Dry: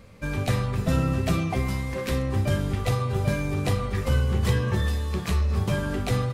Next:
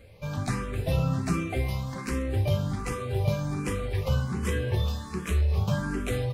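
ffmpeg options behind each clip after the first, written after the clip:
-filter_complex "[0:a]bandreject=f=1.9k:w=20,asplit=2[a][b];[b]afreqshift=1.3[c];[a][c]amix=inputs=2:normalize=1"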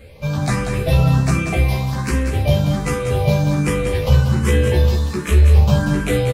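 -filter_complex "[0:a]asplit=2[a][b];[b]adelay=14,volume=-2dB[c];[a][c]amix=inputs=2:normalize=0,aecho=1:1:188:0.447,volume=8dB"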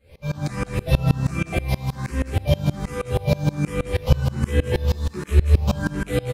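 -af "aeval=exprs='val(0)*pow(10,-25*if(lt(mod(-6.3*n/s,1),2*abs(-6.3)/1000),1-mod(-6.3*n/s,1)/(2*abs(-6.3)/1000),(mod(-6.3*n/s,1)-2*abs(-6.3)/1000)/(1-2*abs(-6.3)/1000))/20)':c=same,volume=1.5dB"

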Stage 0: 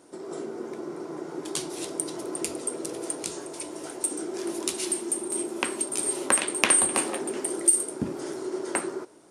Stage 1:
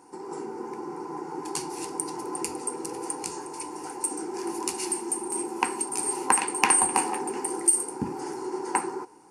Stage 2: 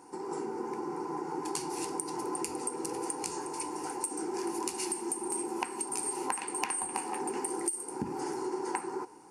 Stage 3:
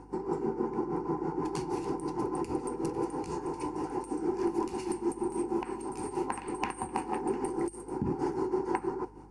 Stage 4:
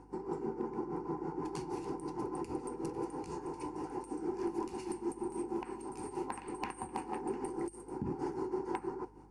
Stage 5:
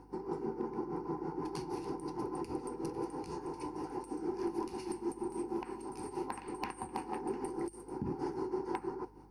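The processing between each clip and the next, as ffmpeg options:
-af "superequalizer=8b=0.251:9b=3.55:13b=0.316,volume=-1dB"
-af "acompressor=threshold=-30dB:ratio=10"
-af "tremolo=f=6.3:d=0.65,aemphasis=mode=reproduction:type=riaa,aeval=exprs='val(0)+0.00141*(sin(2*PI*50*n/s)+sin(2*PI*2*50*n/s)/2+sin(2*PI*3*50*n/s)/3+sin(2*PI*4*50*n/s)/4+sin(2*PI*5*50*n/s)/5)':c=same,volume=3dB"
-af "asoftclip=type=hard:threshold=-20dB,volume=-6dB"
-af "aexciter=amount=1.4:drive=1.9:freq=4.2k"

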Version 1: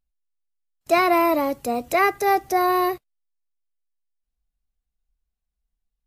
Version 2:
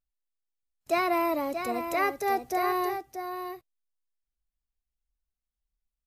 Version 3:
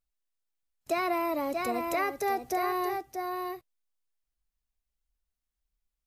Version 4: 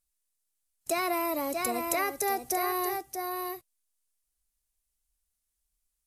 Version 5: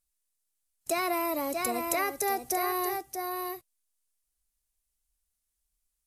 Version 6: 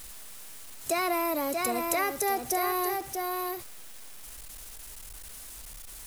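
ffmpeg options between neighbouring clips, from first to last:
-af "aecho=1:1:632:0.398,volume=-8dB"
-af "acompressor=threshold=-27dB:ratio=6,volume=1.5dB"
-af "equalizer=f=10k:t=o:w=1.5:g=15,volume=-1dB"
-af anull
-af "aeval=exprs='val(0)+0.5*0.0133*sgn(val(0))':c=same"

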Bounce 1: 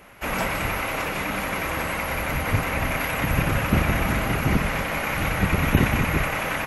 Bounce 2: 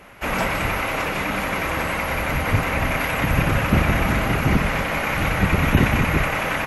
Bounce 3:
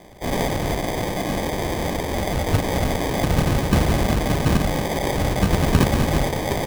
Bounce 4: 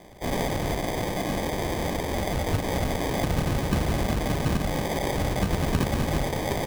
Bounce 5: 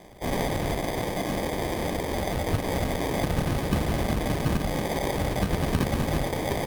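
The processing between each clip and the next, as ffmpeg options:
-filter_complex "[0:a]highshelf=f=9.3k:g=-7,asplit=2[a][b];[b]acontrast=56,volume=1dB[c];[a][c]amix=inputs=2:normalize=0,volume=-7dB"
-af "acrusher=samples=32:mix=1:aa=0.000001"
-af "acompressor=threshold=-20dB:ratio=2,volume=-3dB"
-ar 48000 -c:a libopus -b:a 48k

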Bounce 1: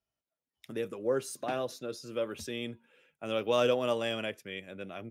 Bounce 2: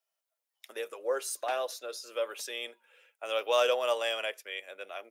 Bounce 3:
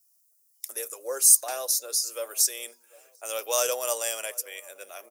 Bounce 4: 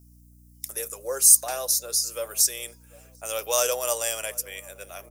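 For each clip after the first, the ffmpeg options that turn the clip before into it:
-af "highpass=f=520:w=0.5412,highpass=f=520:w=1.3066,highshelf=f=8.3k:g=5.5,volume=3dB"
-filter_complex "[0:a]aexciter=amount=14.7:drive=3.1:freq=4.9k,bandreject=f=60:t=h:w=6,bandreject=f=120:t=h:w=6,bandreject=f=180:t=h:w=6,bandreject=f=240:t=h:w=6,asplit=2[a][b];[b]adelay=745,lowpass=f=870:p=1,volume=-21dB,asplit=2[c][d];[d]adelay=745,lowpass=f=870:p=1,volume=0.55,asplit=2[e][f];[f]adelay=745,lowpass=f=870:p=1,volume=0.55,asplit=2[g][h];[h]adelay=745,lowpass=f=870:p=1,volume=0.55[i];[a][c][e][g][i]amix=inputs=5:normalize=0,volume=-2dB"
-af "aeval=exprs='val(0)+0.002*(sin(2*PI*60*n/s)+sin(2*PI*2*60*n/s)/2+sin(2*PI*3*60*n/s)/3+sin(2*PI*4*60*n/s)/4+sin(2*PI*5*60*n/s)/5)':c=same,volume=2dB"

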